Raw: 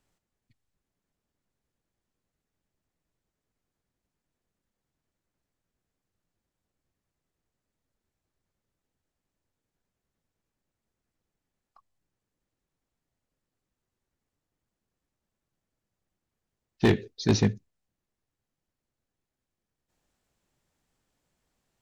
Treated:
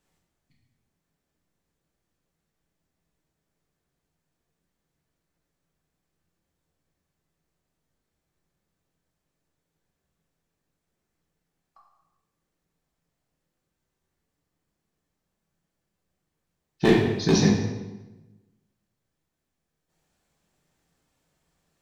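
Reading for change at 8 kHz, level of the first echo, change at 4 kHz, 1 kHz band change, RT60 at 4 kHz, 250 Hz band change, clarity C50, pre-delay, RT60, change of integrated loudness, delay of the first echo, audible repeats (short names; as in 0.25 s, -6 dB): n/a, none, +4.5 dB, +5.0 dB, 0.90 s, +5.0 dB, 2.5 dB, 4 ms, 1.1 s, +3.5 dB, none, none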